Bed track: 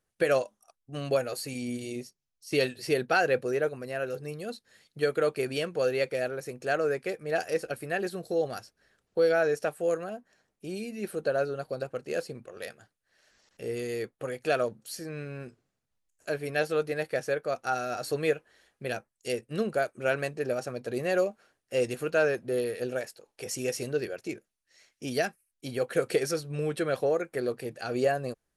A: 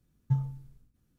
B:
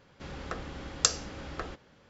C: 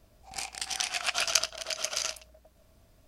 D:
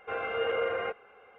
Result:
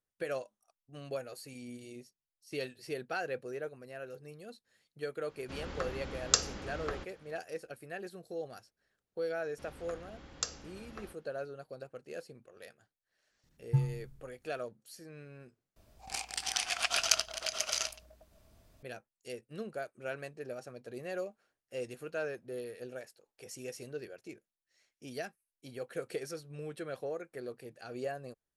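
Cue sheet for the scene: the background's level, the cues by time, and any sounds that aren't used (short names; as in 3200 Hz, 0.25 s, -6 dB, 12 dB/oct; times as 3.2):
bed track -12 dB
5.29 add B -1.5 dB
9.38 add B -11 dB
13.43 add A -1 dB
15.76 replace with C -2 dB
not used: D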